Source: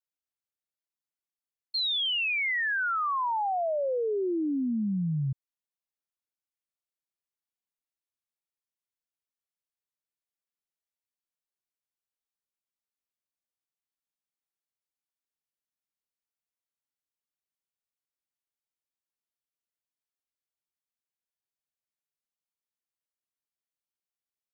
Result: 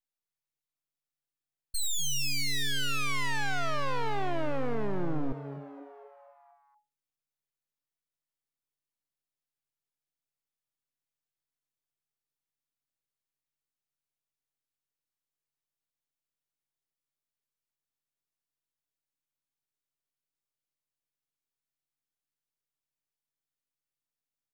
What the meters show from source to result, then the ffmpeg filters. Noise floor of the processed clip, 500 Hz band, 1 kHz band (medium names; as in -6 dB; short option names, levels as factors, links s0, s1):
under -85 dBFS, -5.0 dB, -5.0 dB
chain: -filter_complex "[0:a]aeval=exprs='0.0562*(cos(1*acos(clip(val(0)/0.0562,-1,1)))-cos(1*PI/2))+0.0158*(cos(2*acos(clip(val(0)/0.0562,-1,1)))-cos(2*PI/2))+0.00562*(cos(8*acos(clip(val(0)/0.0562,-1,1)))-cos(8*PI/2))':c=same,aeval=exprs='abs(val(0))':c=same,asplit=7[s0][s1][s2][s3][s4][s5][s6];[s1]adelay=237,afreqshift=140,volume=0.2[s7];[s2]adelay=474,afreqshift=280,volume=0.112[s8];[s3]adelay=711,afreqshift=420,volume=0.0624[s9];[s4]adelay=948,afreqshift=560,volume=0.0351[s10];[s5]adelay=1185,afreqshift=700,volume=0.0197[s11];[s6]adelay=1422,afreqshift=840,volume=0.011[s12];[s0][s7][s8][s9][s10][s11][s12]amix=inputs=7:normalize=0"